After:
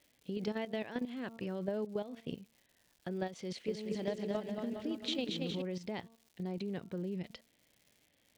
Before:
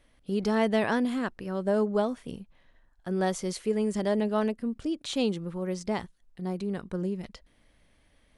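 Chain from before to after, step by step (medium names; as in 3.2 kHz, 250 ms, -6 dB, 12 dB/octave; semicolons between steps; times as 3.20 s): Chebyshev band-pass 120–3200 Hz, order 2; de-hum 227.1 Hz, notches 6; level held to a coarse grid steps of 13 dB; bass shelf 370 Hz -6.5 dB; compression 6:1, threshold -40 dBFS, peak gain reduction 13.5 dB; crackle 230 per s -59 dBFS; peaking EQ 1.2 kHz -10 dB 1.1 oct; 3.44–5.62 s: bouncing-ball echo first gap 230 ms, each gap 0.8×, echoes 5; trim +7 dB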